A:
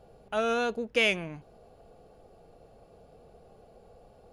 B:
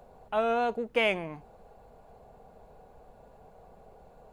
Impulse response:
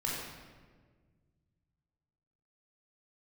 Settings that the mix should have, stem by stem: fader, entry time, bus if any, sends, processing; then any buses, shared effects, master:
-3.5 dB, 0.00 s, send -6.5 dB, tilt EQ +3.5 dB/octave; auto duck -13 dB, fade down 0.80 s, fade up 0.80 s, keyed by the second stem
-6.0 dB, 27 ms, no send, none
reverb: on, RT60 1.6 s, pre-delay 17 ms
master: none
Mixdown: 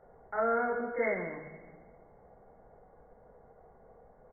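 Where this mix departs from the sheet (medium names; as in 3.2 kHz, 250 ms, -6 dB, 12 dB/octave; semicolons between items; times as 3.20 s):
stem B: polarity flipped; master: extra brick-wall FIR low-pass 2.2 kHz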